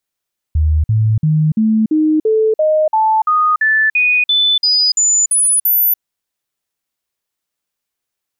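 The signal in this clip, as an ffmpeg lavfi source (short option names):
-f lavfi -i "aevalsrc='0.335*clip(min(mod(t,0.34),0.29-mod(t,0.34))/0.005,0,1)*sin(2*PI*77.4*pow(2,floor(t/0.34)/2)*mod(t,0.34))':d=5.44:s=44100"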